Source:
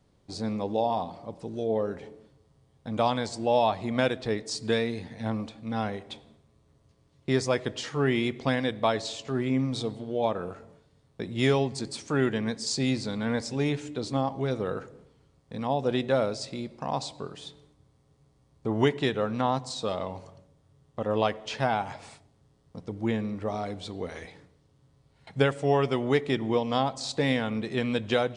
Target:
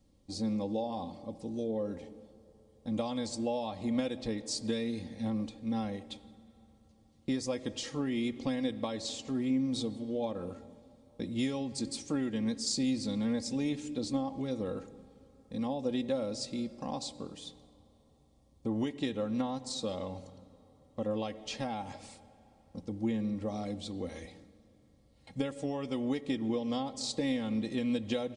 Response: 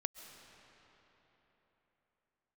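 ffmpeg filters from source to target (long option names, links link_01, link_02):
-filter_complex "[0:a]asplit=2[link_01][link_02];[1:a]atrim=start_sample=2205[link_03];[link_02][link_03]afir=irnorm=-1:irlink=0,volume=-12.5dB[link_04];[link_01][link_04]amix=inputs=2:normalize=0,acompressor=threshold=-24dB:ratio=6,equalizer=frequency=1300:width_type=o:width=2.7:gain=-10,bandreject=frequency=1500:width=7.2,aecho=1:1:3.7:0.6,volume=-2dB"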